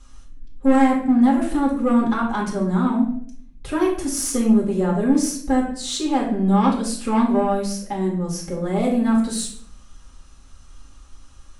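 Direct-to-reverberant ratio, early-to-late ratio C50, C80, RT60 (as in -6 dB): -4.0 dB, 5.5 dB, 9.5 dB, 0.60 s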